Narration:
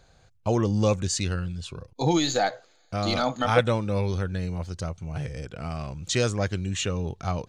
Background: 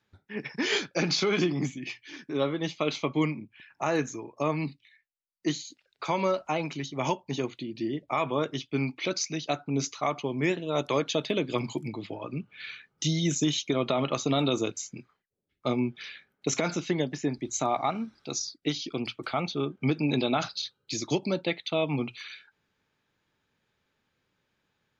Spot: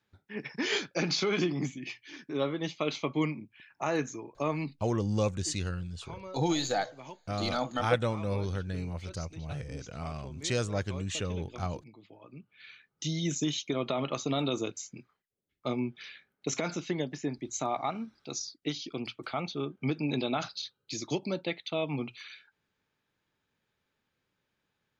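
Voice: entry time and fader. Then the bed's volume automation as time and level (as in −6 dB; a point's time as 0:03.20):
4.35 s, −6.0 dB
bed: 0:04.62 −3 dB
0:05.17 −18 dB
0:12.01 −18 dB
0:13.21 −4.5 dB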